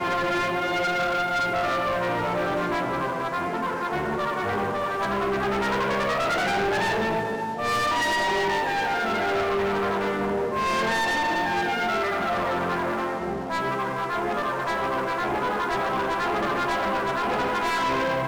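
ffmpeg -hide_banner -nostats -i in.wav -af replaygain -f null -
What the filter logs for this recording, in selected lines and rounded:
track_gain = +8.2 dB
track_peak = 0.059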